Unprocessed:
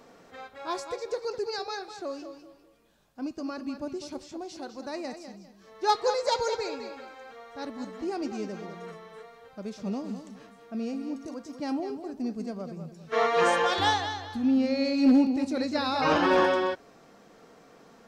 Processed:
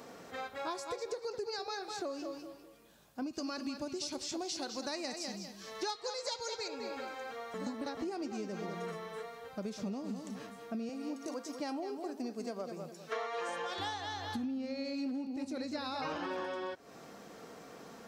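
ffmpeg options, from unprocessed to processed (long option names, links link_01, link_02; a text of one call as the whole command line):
ffmpeg -i in.wav -filter_complex "[0:a]asettb=1/sr,asplit=3[link_01][link_02][link_03];[link_01]atrim=end=3.334[link_04];[link_02]atrim=start=3.33:end=6.68,asetpts=PTS-STARTPTS,afade=type=in:duration=0.004:curve=qsin,afade=type=out:start_time=3.346:duration=0.004:curve=qsin,equalizer=frequency=5000:width_type=o:width=2.7:gain=9.5[link_05];[link_03]atrim=start=6.676[link_06];[link_04][link_05]acrossfade=duration=0.004:curve1=hsin:curve2=qsin[link_07];[link_07][link_06]acrossfade=duration=0.004:curve1=qsin:curve2=hsin,asettb=1/sr,asplit=3[link_08][link_09][link_10];[link_08]atrim=end=10.894[link_11];[link_09]atrim=start=10.89:end=13.49,asetpts=PTS-STARTPTS,afade=type=in:duration=0.004:curve=qsin,afade=type=out:start_time=2.596:duration=0.004:curve=qsin,highpass=350[link_12];[link_10]atrim=start=13.486[link_13];[link_11][link_12]acrossfade=duration=0.004:curve1=hsin:curve2=qsin[link_14];[link_14][link_13]acrossfade=duration=0.004:curve1=qsin:curve2=hsin,asplit=3[link_15][link_16][link_17];[link_15]atrim=end=7.542[link_18];[link_16]atrim=start=7.538:end=7.972,asetpts=PTS-STARTPTS,areverse[link_19];[link_17]atrim=start=7.968[link_20];[link_18][link_19]acrossfade=duration=0.004:curve1=hsin:curve2=hsin[link_21];[link_21][link_20]acrossfade=duration=0.004:curve1=hsin:curve2=hsin,highpass=56,highshelf=frequency=7800:gain=6.5,acompressor=threshold=-38dB:ratio=16,volume=3dB" out.wav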